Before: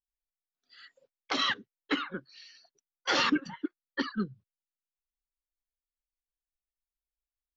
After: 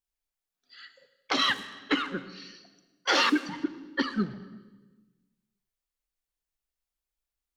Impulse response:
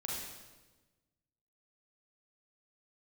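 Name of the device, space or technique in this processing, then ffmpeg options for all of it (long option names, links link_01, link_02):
saturated reverb return: -filter_complex "[0:a]asplit=2[link_01][link_02];[1:a]atrim=start_sample=2205[link_03];[link_02][link_03]afir=irnorm=-1:irlink=0,asoftclip=type=tanh:threshold=-31dB,volume=-8.5dB[link_04];[link_01][link_04]amix=inputs=2:normalize=0,asettb=1/sr,asplit=3[link_05][link_06][link_07];[link_05]atrim=end=3.084[link_08];[link_06]atrim=start=3.08:end=3.49,asetpts=PTS-STARTPTS,afade=type=in:duration=0.004:curve=qsin,afade=type=out:start_time=0.406:duration=0.004:curve=qsin,highpass=frequency=250:width=0.5412,highpass=frequency=250:width=1.3066[link_09];[link_07]atrim=start=3.486[link_10];[link_08][link_09]acrossfade=duration=0.004:curve1=hsin:curve2=qsin[link_11];[link_11][link_10]acrossfade=duration=0.004:curve1=qsin:curve2=hsin,volume=2.5dB"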